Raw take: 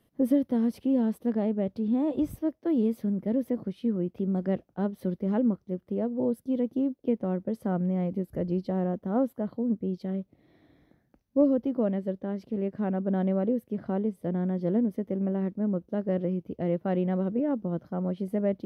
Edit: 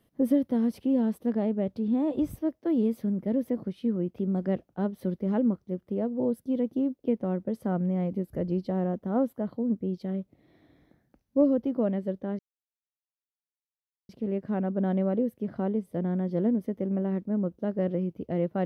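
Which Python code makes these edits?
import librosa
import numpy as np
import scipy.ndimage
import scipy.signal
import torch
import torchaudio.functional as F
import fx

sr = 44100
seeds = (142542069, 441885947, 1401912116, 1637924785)

y = fx.edit(x, sr, fx.insert_silence(at_s=12.39, length_s=1.7), tone=tone)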